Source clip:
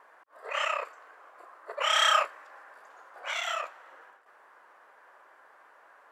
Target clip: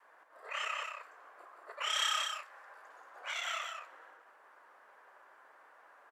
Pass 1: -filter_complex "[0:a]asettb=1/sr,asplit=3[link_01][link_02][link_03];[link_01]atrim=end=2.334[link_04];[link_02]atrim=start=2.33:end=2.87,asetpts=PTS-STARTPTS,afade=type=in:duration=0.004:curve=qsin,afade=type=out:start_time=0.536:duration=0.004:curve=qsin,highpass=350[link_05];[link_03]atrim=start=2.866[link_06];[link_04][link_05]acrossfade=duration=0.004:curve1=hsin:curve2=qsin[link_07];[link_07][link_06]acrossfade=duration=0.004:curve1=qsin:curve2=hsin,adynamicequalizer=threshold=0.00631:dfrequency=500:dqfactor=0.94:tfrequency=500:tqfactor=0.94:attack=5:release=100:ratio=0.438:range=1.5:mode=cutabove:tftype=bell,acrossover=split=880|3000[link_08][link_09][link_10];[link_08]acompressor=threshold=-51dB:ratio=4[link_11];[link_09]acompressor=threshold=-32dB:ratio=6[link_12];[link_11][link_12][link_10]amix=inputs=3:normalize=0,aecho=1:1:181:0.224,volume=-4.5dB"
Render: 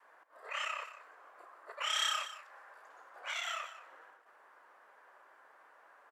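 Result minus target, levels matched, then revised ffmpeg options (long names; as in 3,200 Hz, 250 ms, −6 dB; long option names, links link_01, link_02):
echo-to-direct −8.5 dB
-filter_complex "[0:a]asettb=1/sr,asplit=3[link_01][link_02][link_03];[link_01]atrim=end=2.334[link_04];[link_02]atrim=start=2.33:end=2.87,asetpts=PTS-STARTPTS,afade=type=in:duration=0.004:curve=qsin,afade=type=out:start_time=0.536:duration=0.004:curve=qsin,highpass=350[link_05];[link_03]atrim=start=2.866[link_06];[link_04][link_05]acrossfade=duration=0.004:curve1=hsin:curve2=qsin[link_07];[link_07][link_06]acrossfade=duration=0.004:curve1=qsin:curve2=hsin,adynamicequalizer=threshold=0.00631:dfrequency=500:dqfactor=0.94:tfrequency=500:tqfactor=0.94:attack=5:release=100:ratio=0.438:range=1.5:mode=cutabove:tftype=bell,acrossover=split=880|3000[link_08][link_09][link_10];[link_08]acompressor=threshold=-51dB:ratio=4[link_11];[link_09]acompressor=threshold=-32dB:ratio=6[link_12];[link_11][link_12][link_10]amix=inputs=3:normalize=0,aecho=1:1:181:0.596,volume=-4.5dB"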